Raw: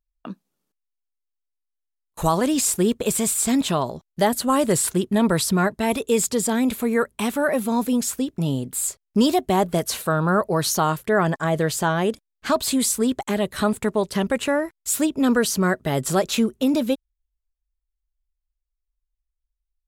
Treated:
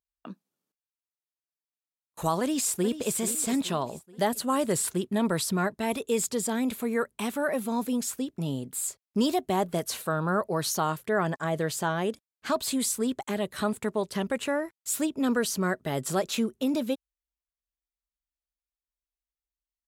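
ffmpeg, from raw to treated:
ffmpeg -i in.wav -filter_complex "[0:a]asplit=2[link_01][link_02];[link_02]afade=type=in:start_time=2.4:duration=0.01,afade=type=out:start_time=3.13:duration=0.01,aecho=0:1:430|860|1290|1720|2150:0.251189|0.113035|0.0508657|0.0228896|0.0103003[link_03];[link_01][link_03]amix=inputs=2:normalize=0,highpass=41,lowshelf=frequency=62:gain=-11,volume=-6.5dB" out.wav

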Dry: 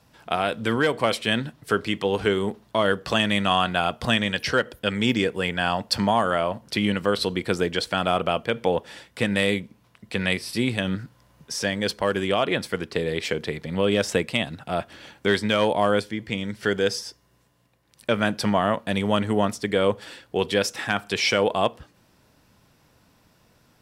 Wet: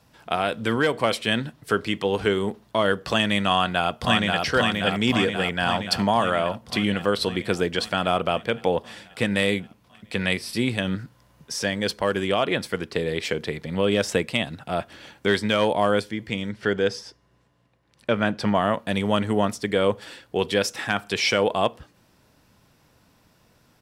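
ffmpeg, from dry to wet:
ffmpeg -i in.wav -filter_complex "[0:a]asplit=2[link_01][link_02];[link_02]afade=type=in:start_time=3.53:duration=0.01,afade=type=out:start_time=4.43:duration=0.01,aecho=0:1:530|1060|1590|2120|2650|3180|3710|4240|4770|5300|5830|6360:0.707946|0.495562|0.346893|0.242825|0.169978|0.118984|0.0832891|0.0583024|0.0408117|0.0285682|0.0199977|0.0139984[link_03];[link_01][link_03]amix=inputs=2:normalize=0,asettb=1/sr,asplit=3[link_04][link_05][link_06];[link_04]atrim=end=16.494[link_07];[link_05]atrim=start=16.49:end=18.55,asetpts=PTS-STARTPTS,afade=type=in:duration=0.004:curve=qsin,afade=type=out:start_time=2.056:duration=0.004:curve=qsin,aemphasis=mode=reproduction:type=50fm[link_08];[link_06]atrim=start=18.546[link_09];[link_07][link_08]acrossfade=duration=0.004:curve1=hsin:curve2=qsin[link_10];[link_10][link_09]acrossfade=duration=0.004:curve1=qsin:curve2=hsin" out.wav

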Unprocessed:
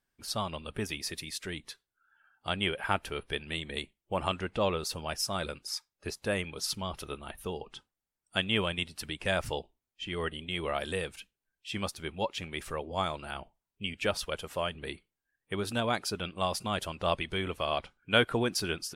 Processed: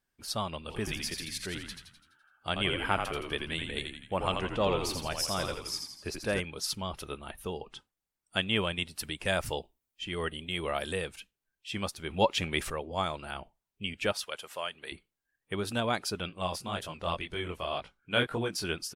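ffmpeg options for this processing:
ffmpeg -i in.wav -filter_complex "[0:a]asplit=3[link_01][link_02][link_03];[link_01]afade=type=out:start_time=0.68:duration=0.02[link_04];[link_02]asplit=8[link_05][link_06][link_07][link_08][link_09][link_10][link_11][link_12];[link_06]adelay=84,afreqshift=-63,volume=-5.5dB[link_13];[link_07]adelay=168,afreqshift=-126,volume=-11.2dB[link_14];[link_08]adelay=252,afreqshift=-189,volume=-16.9dB[link_15];[link_09]adelay=336,afreqshift=-252,volume=-22.5dB[link_16];[link_10]adelay=420,afreqshift=-315,volume=-28.2dB[link_17];[link_11]adelay=504,afreqshift=-378,volume=-33.9dB[link_18];[link_12]adelay=588,afreqshift=-441,volume=-39.6dB[link_19];[link_05][link_13][link_14][link_15][link_16][link_17][link_18][link_19]amix=inputs=8:normalize=0,afade=type=in:start_time=0.68:duration=0.02,afade=type=out:start_time=6.39:duration=0.02[link_20];[link_03]afade=type=in:start_time=6.39:duration=0.02[link_21];[link_04][link_20][link_21]amix=inputs=3:normalize=0,asettb=1/sr,asplit=3[link_22][link_23][link_24];[link_22]atrim=end=8.884[link_25];[link_23]atrim=start=8.88:end=10.93,asetpts=PTS-STARTPTS,afade=type=in:duration=0.004:curve=qsin,afade=type=out:start_time=2.046:duration=0.004:curve=qsin,highshelf=frequency=9200:gain=8.5[link_26];[link_24]atrim=start=10.926[link_27];[link_25][link_26]acrossfade=duration=0.004:curve1=hsin:curve2=qsin[link_28];[link_28][link_27]acrossfade=duration=0.004:curve1=qsin:curve2=hsin,asettb=1/sr,asplit=3[link_29][link_30][link_31];[link_29]atrim=end=14.124[link_32];[link_30]atrim=start=14.12:end=14.92,asetpts=PTS-STARTPTS,afade=type=in:duration=0.004:curve=qsin,afade=type=out:start_time=0.796:duration=0.004:curve=qsin,highpass=frequency=950:poles=1[link_33];[link_31]atrim=start=14.916[link_34];[link_32][link_33]acrossfade=duration=0.004:curve1=hsin:curve2=qsin[link_35];[link_35][link_34]acrossfade=duration=0.004:curve1=qsin:curve2=hsin,asplit=3[link_36][link_37][link_38];[link_36]afade=type=out:start_time=16.29:duration=0.02[link_39];[link_37]flanger=delay=18:depth=6.6:speed=1.9,afade=type=in:start_time=16.29:duration=0.02,afade=type=out:start_time=18.63:duration=0.02[link_40];[link_38]afade=type=in:start_time=18.63:duration=0.02[link_41];[link_39][link_40][link_41]amix=inputs=3:normalize=0,asplit=3[link_42][link_43][link_44];[link_42]atrim=end=12.102[link_45];[link_43]atrim=start=12.098:end=12.702,asetpts=PTS-STARTPTS,volume=7dB[link_46];[link_44]atrim=start=12.698[link_47];[link_45][link_46]acrossfade=duration=0.004:curve1=hsin:curve2=hsin[link_48];[link_48][link_47]acrossfade=duration=0.004:curve1=hsin:curve2=hsin" out.wav

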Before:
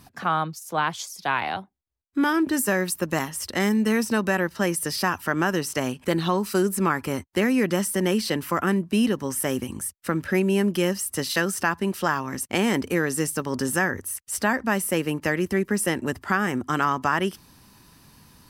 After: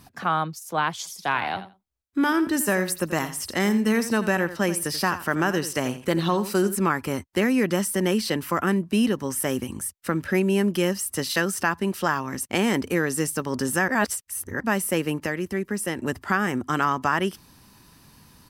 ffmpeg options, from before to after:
ffmpeg -i in.wav -filter_complex "[0:a]asplit=3[link_01][link_02][link_03];[link_01]afade=type=out:start_time=1.04:duration=0.02[link_04];[link_02]aecho=1:1:85|170:0.224|0.0358,afade=type=in:start_time=1.04:duration=0.02,afade=type=out:start_time=6.74:duration=0.02[link_05];[link_03]afade=type=in:start_time=6.74:duration=0.02[link_06];[link_04][link_05][link_06]amix=inputs=3:normalize=0,asplit=5[link_07][link_08][link_09][link_10][link_11];[link_07]atrim=end=13.882[link_12];[link_08]atrim=start=13.878:end=14.602,asetpts=PTS-STARTPTS,areverse[link_13];[link_09]atrim=start=14.598:end=15.262[link_14];[link_10]atrim=start=15.258:end=15.982,asetpts=PTS-STARTPTS,volume=-4dB[link_15];[link_11]atrim=start=15.978[link_16];[link_12][link_13]acrossfade=duration=0.004:curve1=hsin:curve2=hsin[link_17];[link_17][link_14]acrossfade=duration=0.004:curve1=hsin:curve2=hsin[link_18];[link_18][link_15]acrossfade=duration=0.004:curve1=hsin:curve2=hsin[link_19];[link_19][link_16]acrossfade=duration=0.004:curve1=hsin:curve2=hsin" out.wav

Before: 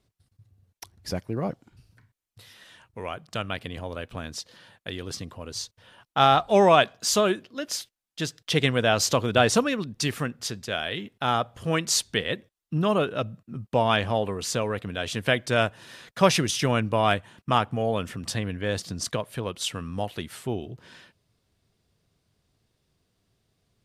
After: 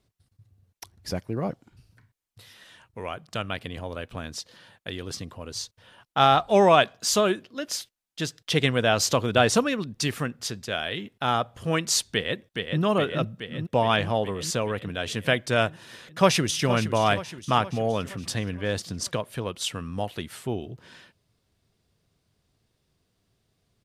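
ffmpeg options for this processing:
ffmpeg -i in.wav -filter_complex "[0:a]asplit=2[link_01][link_02];[link_02]afade=type=in:start_time=12.12:duration=0.01,afade=type=out:start_time=12.82:duration=0.01,aecho=0:1:420|840|1260|1680|2100|2520|2940|3360|3780|4200|4620|5040:0.595662|0.416964|0.291874|0.204312|0.143018|0.100113|0.0700791|0.0490553|0.0343387|0.0240371|0.016826|0.0117782[link_03];[link_01][link_03]amix=inputs=2:normalize=0,asplit=2[link_04][link_05];[link_05]afade=type=in:start_time=16.07:duration=0.01,afade=type=out:start_time=16.68:duration=0.01,aecho=0:1:470|940|1410|1880|2350|2820:0.266073|0.14634|0.0804869|0.0442678|0.0243473|0.013391[link_06];[link_04][link_06]amix=inputs=2:normalize=0" out.wav

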